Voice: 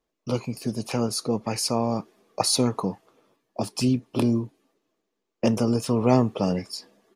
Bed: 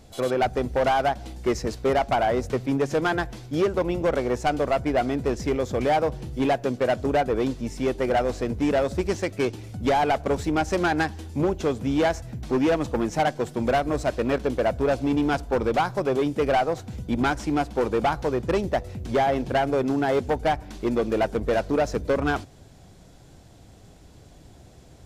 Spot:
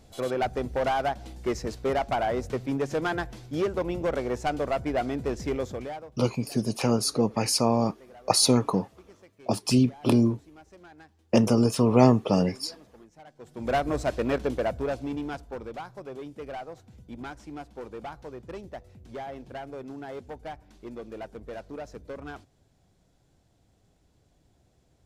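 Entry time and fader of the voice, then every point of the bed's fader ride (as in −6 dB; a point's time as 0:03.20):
5.90 s, +1.5 dB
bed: 0:05.64 −4.5 dB
0:06.24 −28 dB
0:13.26 −28 dB
0:13.75 −2.5 dB
0:14.45 −2.5 dB
0:15.79 −16 dB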